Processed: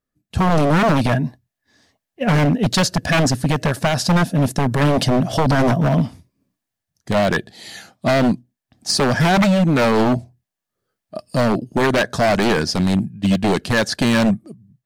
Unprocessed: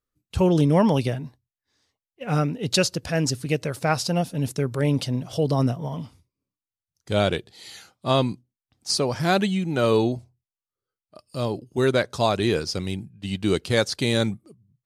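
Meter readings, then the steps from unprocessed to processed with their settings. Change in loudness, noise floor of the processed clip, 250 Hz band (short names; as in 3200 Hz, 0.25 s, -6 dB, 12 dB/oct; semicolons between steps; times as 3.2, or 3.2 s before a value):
+6.0 dB, -84 dBFS, +7.0 dB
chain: dynamic EQ 1600 Hz, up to +7 dB, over -46 dBFS, Q 3.8; AGC gain up to 11 dB; limiter -8.5 dBFS, peak gain reduction 7.5 dB; small resonant body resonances 210/650/1700 Hz, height 10 dB, ringing for 20 ms; wavefolder -10 dBFS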